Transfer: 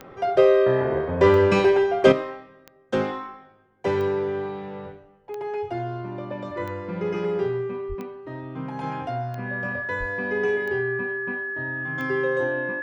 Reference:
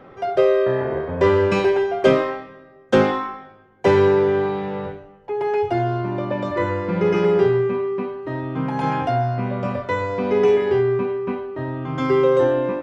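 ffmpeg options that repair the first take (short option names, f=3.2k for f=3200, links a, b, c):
-filter_complex "[0:a]adeclick=t=4,bandreject=f=1.7k:w=30,asplit=3[a][b][c];[a]afade=t=out:st=7.88:d=0.02[d];[b]highpass=f=140:w=0.5412,highpass=f=140:w=1.3066,afade=t=in:st=7.88:d=0.02,afade=t=out:st=8:d=0.02[e];[c]afade=t=in:st=8:d=0.02[f];[d][e][f]amix=inputs=3:normalize=0,asplit=3[g][h][i];[g]afade=t=out:st=9.99:d=0.02[j];[h]highpass=f=140:w=0.5412,highpass=f=140:w=1.3066,afade=t=in:st=9.99:d=0.02,afade=t=out:st=10.11:d=0.02[k];[i]afade=t=in:st=10.11:d=0.02[l];[j][k][l]amix=inputs=3:normalize=0,asetnsamples=n=441:p=0,asendcmd='2.12 volume volume 8.5dB',volume=0dB"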